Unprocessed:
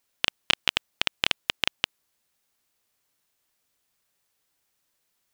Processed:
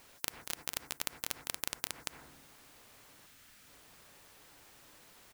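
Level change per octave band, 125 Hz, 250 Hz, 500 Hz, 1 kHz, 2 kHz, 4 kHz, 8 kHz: −9.0, −9.0, −9.5, −10.5, −15.5, −17.0, +1.0 decibels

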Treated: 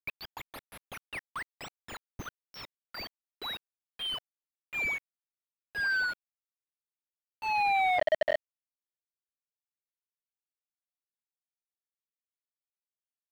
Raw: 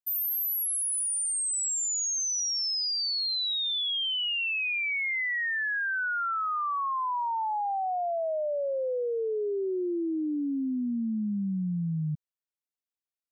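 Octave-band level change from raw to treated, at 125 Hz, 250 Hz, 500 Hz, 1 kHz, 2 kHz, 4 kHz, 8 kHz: −19.0, −24.5, −5.5, −3.0, −3.0, −11.5, −28.0 decibels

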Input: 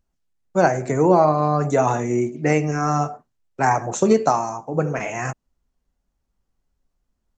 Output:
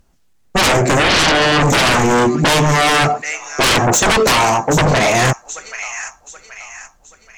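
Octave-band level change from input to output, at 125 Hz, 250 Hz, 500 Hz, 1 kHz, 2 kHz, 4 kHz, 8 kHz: +6.5, +4.5, +3.5, +6.0, +15.0, +27.0, +15.5 decibels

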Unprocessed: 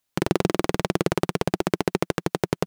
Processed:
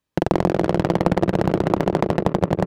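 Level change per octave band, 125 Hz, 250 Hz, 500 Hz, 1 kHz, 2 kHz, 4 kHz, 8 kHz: +6.5, +5.5, +4.5, +6.0, 0.0, −3.5, −7.0 decibels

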